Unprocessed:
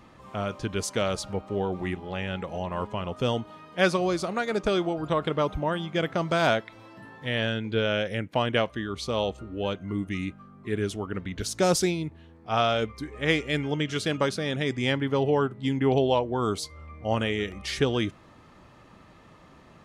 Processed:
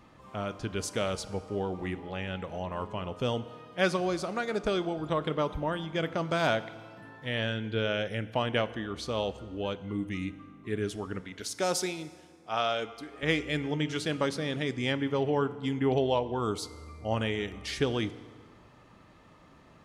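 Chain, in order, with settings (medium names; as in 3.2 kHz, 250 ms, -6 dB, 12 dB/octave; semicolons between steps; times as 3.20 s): 11.21–13.23 s: high-pass 430 Hz 6 dB/octave; FDN reverb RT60 1.7 s, low-frequency decay 1×, high-frequency decay 0.85×, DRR 14 dB; trim -4 dB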